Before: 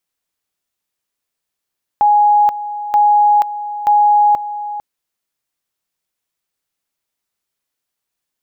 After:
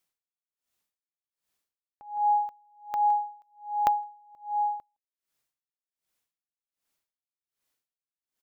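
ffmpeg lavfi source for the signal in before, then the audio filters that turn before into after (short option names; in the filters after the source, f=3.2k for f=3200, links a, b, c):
-f lavfi -i "aevalsrc='pow(10,(-7.5-13.5*gte(mod(t,0.93),0.48))/20)*sin(2*PI*831*t)':d=2.79:s=44100"
-filter_complex "[0:a]acompressor=threshold=-21dB:ratio=6,asplit=2[a][b];[b]adelay=163.3,volume=-23dB,highshelf=f=4k:g=-3.67[c];[a][c]amix=inputs=2:normalize=0,aeval=exprs='val(0)*pow(10,-35*(0.5-0.5*cos(2*PI*1.3*n/s))/20)':c=same"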